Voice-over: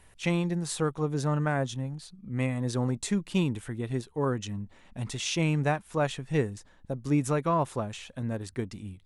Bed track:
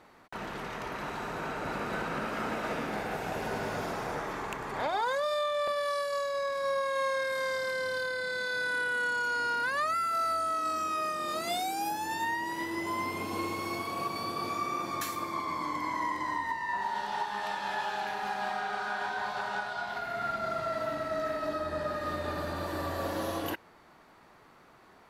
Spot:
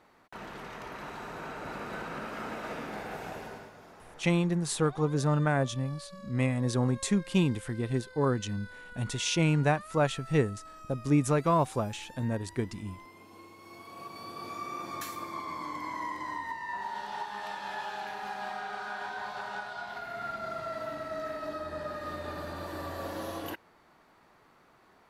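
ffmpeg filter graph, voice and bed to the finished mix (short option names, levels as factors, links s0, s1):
-filter_complex "[0:a]adelay=4000,volume=1.12[s0];[1:a]volume=2.99,afade=t=out:st=3.25:d=0.47:silence=0.211349,afade=t=in:st=13.58:d=1.35:silence=0.199526[s1];[s0][s1]amix=inputs=2:normalize=0"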